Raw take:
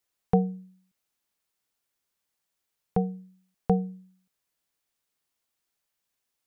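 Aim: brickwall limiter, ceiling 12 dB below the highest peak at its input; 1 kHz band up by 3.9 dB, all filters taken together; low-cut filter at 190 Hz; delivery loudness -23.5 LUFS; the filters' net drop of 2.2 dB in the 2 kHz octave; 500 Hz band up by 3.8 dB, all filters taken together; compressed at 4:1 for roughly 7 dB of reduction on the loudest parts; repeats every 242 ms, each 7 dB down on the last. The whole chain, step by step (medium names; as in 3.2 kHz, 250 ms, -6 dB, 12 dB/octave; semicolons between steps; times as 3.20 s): high-pass 190 Hz; peaking EQ 500 Hz +3.5 dB; peaking EQ 1 kHz +5 dB; peaking EQ 2 kHz -5.5 dB; compression 4:1, threshold -24 dBFS; peak limiter -23.5 dBFS; feedback delay 242 ms, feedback 45%, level -7 dB; trim +16.5 dB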